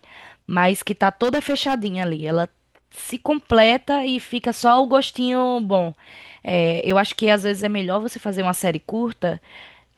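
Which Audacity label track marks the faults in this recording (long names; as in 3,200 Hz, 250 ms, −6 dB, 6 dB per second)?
1.230000	2.320000	clipping −15.5 dBFS
6.900000	6.900000	drop-out 4.6 ms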